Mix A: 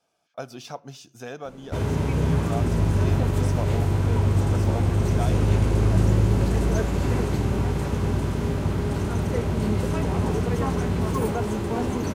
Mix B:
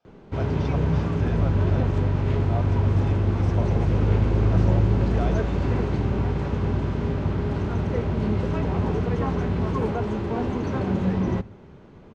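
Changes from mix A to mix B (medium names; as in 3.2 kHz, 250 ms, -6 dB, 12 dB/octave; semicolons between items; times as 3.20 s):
background: entry -1.40 s; master: add distance through air 180 m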